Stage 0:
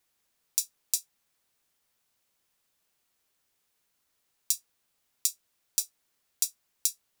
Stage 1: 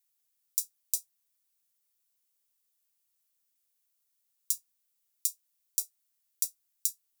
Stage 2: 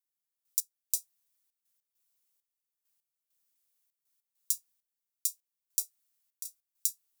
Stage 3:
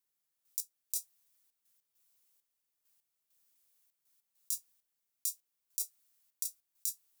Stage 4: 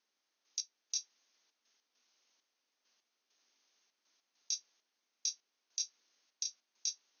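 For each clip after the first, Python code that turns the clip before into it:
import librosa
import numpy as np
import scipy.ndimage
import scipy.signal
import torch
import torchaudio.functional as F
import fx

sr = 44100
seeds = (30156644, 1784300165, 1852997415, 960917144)

y1 = F.preemphasis(torch.from_numpy(x), 0.8).numpy()
y1 = y1 * librosa.db_to_amplitude(-3.5)
y2 = fx.step_gate(y1, sr, bpm=100, pattern='...x..xxxx.x.xxx', floor_db=-12.0, edge_ms=4.5)
y3 = fx.over_compress(y2, sr, threshold_db=-32.0, ratio=-1.0)
y4 = fx.brickwall_bandpass(y3, sr, low_hz=200.0, high_hz=6600.0)
y4 = y4 * librosa.db_to_amplitude(9.0)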